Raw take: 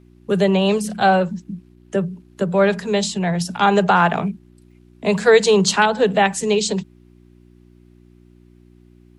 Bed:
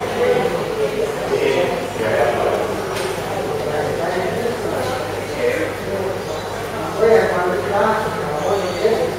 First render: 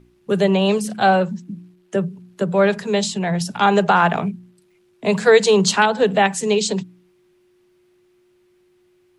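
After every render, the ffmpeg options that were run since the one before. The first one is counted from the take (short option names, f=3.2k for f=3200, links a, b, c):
-af "bandreject=f=60:t=h:w=4,bandreject=f=120:t=h:w=4,bandreject=f=180:t=h:w=4,bandreject=f=240:t=h:w=4,bandreject=f=300:t=h:w=4"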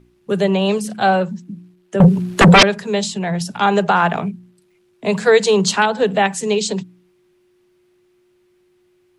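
-filter_complex "[0:a]asettb=1/sr,asplit=3[a][b][c];[a]atrim=end=2.004[d];[b]atrim=start=2:end=2.63,asetpts=PTS-STARTPTS,afade=t=in:d=0.004:c=qsin,afade=t=out:st=0.626:d=0.004:c=qsin,aeval=exprs='0.631*sin(PI/2*7.08*val(0)/0.631)':c=same[e];[c]atrim=start=2.626[f];[d][e]acrossfade=d=0.004:c1=hsin:c2=qsin[g];[g][f]acrossfade=d=0.004:c1=qsin:c2=hsin"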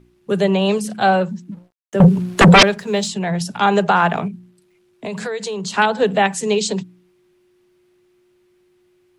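-filter_complex "[0:a]asplit=3[a][b][c];[a]afade=t=out:st=1.51:d=0.02[d];[b]aeval=exprs='sgn(val(0))*max(abs(val(0))-0.00531,0)':c=same,afade=t=in:st=1.51:d=0.02,afade=t=out:st=3.07:d=0.02[e];[c]afade=t=in:st=3.07:d=0.02[f];[d][e][f]amix=inputs=3:normalize=0,asettb=1/sr,asplit=3[g][h][i];[g]atrim=end=4.274[j];[h]atrim=start=4.27:end=5.78,asetpts=PTS-STARTPTS,afade=t=in:d=0.004:c=qsin,afade=t=out:st=1.506:d=0.004:c=qsin,acompressor=threshold=-23dB:ratio=6:attack=3.2:release=140:knee=1:detection=peak[k];[i]atrim=start=5.776[l];[j][k]acrossfade=d=0.004:c1=hsin:c2=qsin[m];[m][l]acrossfade=d=0.004:c1=qsin:c2=hsin"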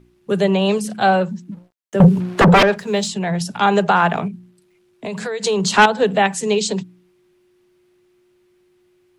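-filter_complex "[0:a]asettb=1/sr,asplit=3[a][b][c];[a]atrim=end=2.204[d];[b]atrim=start=2.2:end=2.76,asetpts=PTS-STARTPTS,afade=t=in:d=0.004:c=qsin,afade=t=out:st=0.556:d=0.004:c=qsin,asplit=2[e][f];[f]highpass=f=720:p=1,volume=16dB,asoftclip=type=tanh:threshold=-4dB[g];[e][g]amix=inputs=2:normalize=0,lowpass=f=1.2k:p=1,volume=-6dB[h];[c]atrim=start=2.756[i];[d][h]acrossfade=d=0.004:c1=hsin:c2=qsin[j];[j][i]acrossfade=d=0.004:c1=qsin:c2=hsin,asettb=1/sr,asplit=3[k][l][m];[k]atrim=end=5.444[n];[l]atrim=start=5.44:end=5.86,asetpts=PTS-STARTPTS,afade=t=in:d=0.004:c=qsin,afade=t=out:st=0.416:d=0.004:c=qsin,acontrast=90[o];[m]atrim=start=5.856[p];[n][o]acrossfade=d=0.004:c1=hsin:c2=qsin[q];[q][p]acrossfade=d=0.004:c1=qsin:c2=hsin"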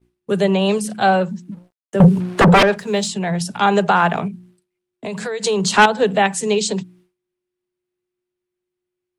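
-af "agate=range=-33dB:threshold=-45dB:ratio=3:detection=peak,equalizer=f=9k:w=3.3:g=4.5"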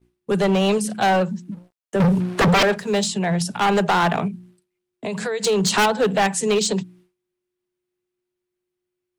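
-af "asoftclip=type=hard:threshold=-14dB"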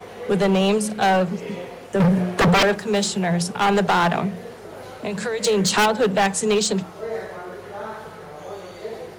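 -filter_complex "[1:a]volume=-16.5dB[a];[0:a][a]amix=inputs=2:normalize=0"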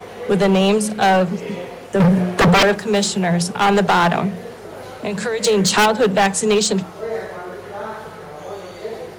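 -af "volume=3.5dB"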